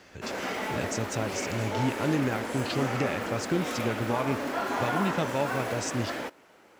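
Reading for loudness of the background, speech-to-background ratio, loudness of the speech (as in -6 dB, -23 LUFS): -32.5 LUFS, 1.0 dB, -31.5 LUFS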